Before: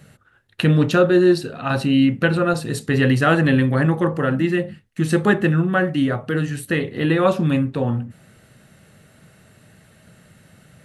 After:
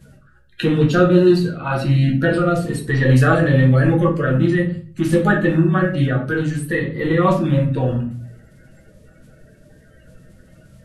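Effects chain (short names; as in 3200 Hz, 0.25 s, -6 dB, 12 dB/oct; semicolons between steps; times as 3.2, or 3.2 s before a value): bin magnitudes rounded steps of 30 dB; low shelf 79 Hz +10.5 dB; shoebox room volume 33 m³, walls mixed, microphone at 0.61 m; gain -3.5 dB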